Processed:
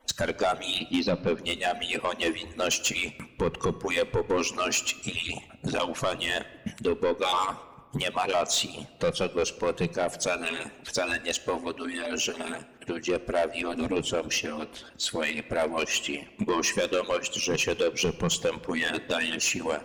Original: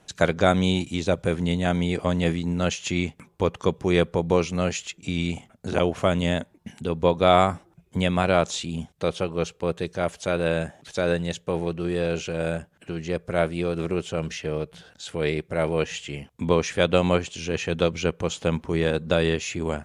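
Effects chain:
harmonic-percussive split with one part muted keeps percussive
noise reduction from a noise print of the clip's start 7 dB
0:00.77–0:01.39: Butterworth low-pass 4,900 Hz 48 dB per octave
0:13.61–0:14.09: low-shelf EQ 230 Hz +11.5 dB
in parallel at +1.5 dB: downward compressor, threshold −35 dBFS, peak gain reduction 18 dB
on the sum: brickwall limiter −16.5 dBFS, peak gain reduction 10.5 dB
soft clipping −24.5 dBFS, distortion −12 dB
on a send at −14 dB: convolution reverb RT60 1.5 s, pre-delay 4 ms
on the sum: level +5.5 dB

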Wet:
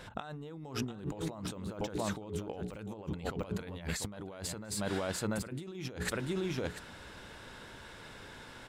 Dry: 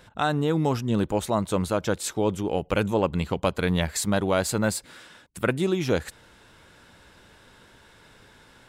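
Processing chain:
0:01.16–0:02.79: de-essing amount 95%
high-shelf EQ 8,900 Hz −5.5 dB
mains-hum notches 60/120/180/240/300/360/420 Hz
single-tap delay 690 ms −12 dB
compressor whose output falls as the input rises −36 dBFS, ratio −1
level −4 dB

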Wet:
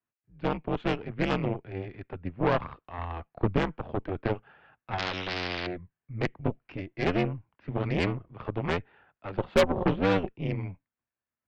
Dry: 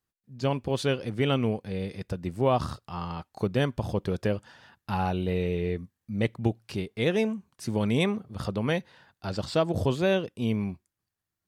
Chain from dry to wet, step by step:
0:02.98–0:03.58: low-shelf EQ 230 Hz +11 dB
single-sideband voice off tune −87 Hz 180–2,800 Hz
0:09.33–0:10.29: hollow resonant body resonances 200/360/540/760 Hz, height 10 dB, ringing for 75 ms
harmonic generator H 6 −11 dB, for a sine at −10 dBFS
0:04.98–0:05.67: every bin compressed towards the loudest bin 4 to 1
level −3 dB

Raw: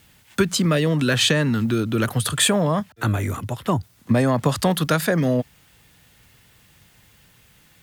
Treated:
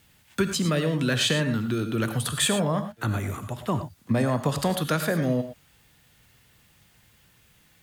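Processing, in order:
reverb whose tail is shaped and stops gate 130 ms rising, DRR 8.5 dB
level −5.5 dB

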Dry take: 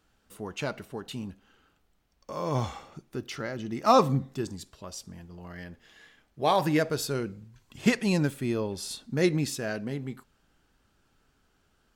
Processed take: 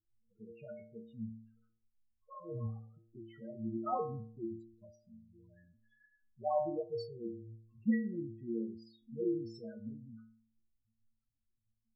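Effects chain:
spectral peaks only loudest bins 4
stiff-string resonator 110 Hz, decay 0.68 s, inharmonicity 0.008
low-pass that shuts in the quiet parts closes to 1,400 Hz, open at −39 dBFS
level +6 dB

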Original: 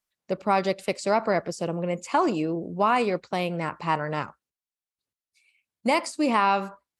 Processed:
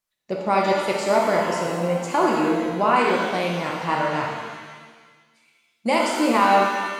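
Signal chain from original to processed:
reverb with rising layers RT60 1.5 s, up +7 semitones, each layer −8 dB, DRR −1.5 dB

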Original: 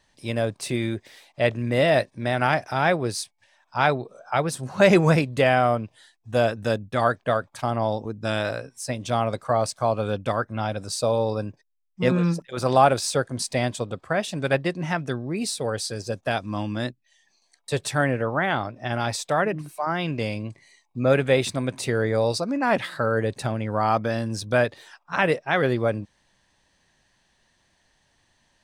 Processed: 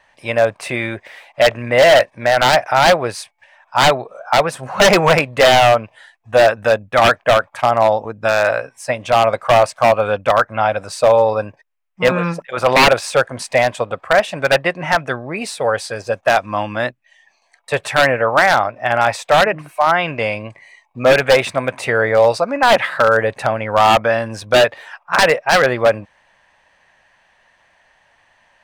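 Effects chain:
flat-topped bell 1,200 Hz +13.5 dB 2.8 octaves
wave folding −4 dBFS

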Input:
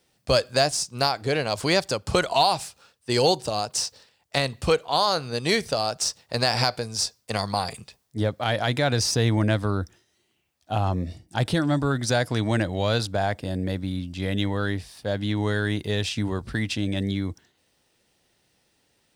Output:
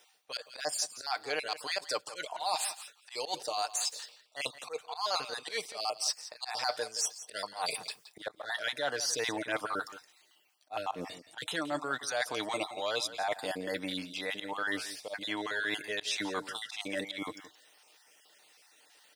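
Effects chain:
time-frequency cells dropped at random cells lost 30%
high-pass filter 650 Hz 12 dB per octave
comb filter 6.6 ms, depth 40%
reversed playback
downward compressor 5 to 1, threshold −39 dBFS, peak gain reduction 20 dB
reversed playback
volume swells 110 ms
on a send: single-tap delay 171 ms −14.5 dB
on the sum: level +7.5 dB

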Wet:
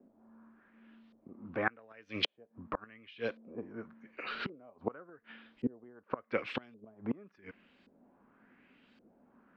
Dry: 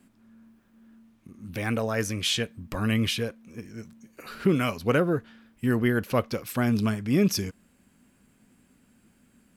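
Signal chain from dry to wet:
gate with flip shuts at −18 dBFS, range −29 dB
auto-filter low-pass saw up 0.89 Hz 500–4,400 Hz
three-way crossover with the lows and the highs turned down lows −15 dB, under 240 Hz, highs −21 dB, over 5,200 Hz

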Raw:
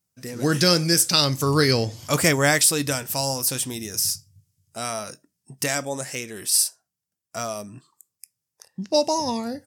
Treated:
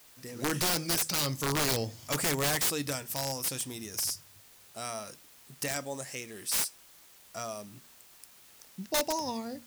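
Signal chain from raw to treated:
low-shelf EQ 140 Hz −2 dB
notch filter 1,500 Hz, Q 19
hum removal 79.01 Hz, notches 3
bit-depth reduction 8 bits, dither triangular
wrap-around overflow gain 13 dB
level −8.5 dB

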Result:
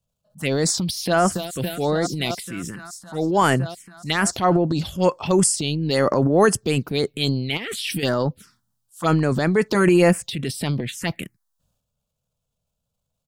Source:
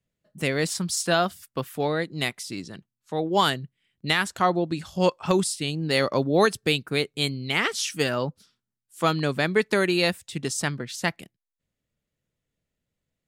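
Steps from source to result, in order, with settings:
0:00.79–0:01.22: delay throw 280 ms, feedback 85%, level −13 dB
0:05.95–0:06.58: notch filter 2,300 Hz, Q 5
0:09.74–0:10.33: comb filter 6 ms, depth 81%
transient designer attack −4 dB, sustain +9 dB
0:07.57–0:08.03: compressor whose output falls as the input rises −30 dBFS, ratio −1
phaser swept by the level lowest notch 330 Hz, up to 3,800 Hz, full sweep at −19.5 dBFS
level +5 dB

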